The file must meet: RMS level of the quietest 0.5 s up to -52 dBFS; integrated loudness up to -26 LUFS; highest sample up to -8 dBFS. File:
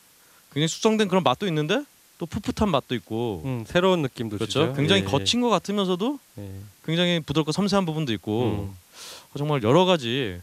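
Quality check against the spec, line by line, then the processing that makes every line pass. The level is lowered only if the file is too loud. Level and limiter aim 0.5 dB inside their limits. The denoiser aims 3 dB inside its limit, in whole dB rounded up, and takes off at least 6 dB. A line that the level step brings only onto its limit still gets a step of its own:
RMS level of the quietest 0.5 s -55 dBFS: OK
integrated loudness -23.5 LUFS: fail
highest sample -4.0 dBFS: fail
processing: gain -3 dB; limiter -8.5 dBFS

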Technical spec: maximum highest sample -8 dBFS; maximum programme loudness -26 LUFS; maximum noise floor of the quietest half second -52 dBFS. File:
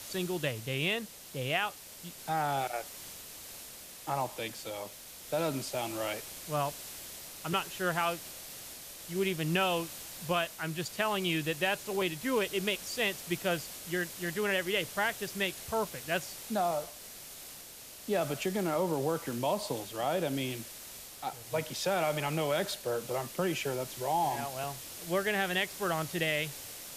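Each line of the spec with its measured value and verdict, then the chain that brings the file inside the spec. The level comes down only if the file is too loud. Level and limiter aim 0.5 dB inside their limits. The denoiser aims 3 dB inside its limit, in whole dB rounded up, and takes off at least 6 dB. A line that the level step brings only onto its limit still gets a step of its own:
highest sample -16.5 dBFS: OK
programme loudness -33.0 LUFS: OK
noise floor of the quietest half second -49 dBFS: fail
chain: denoiser 6 dB, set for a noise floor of -49 dBFS

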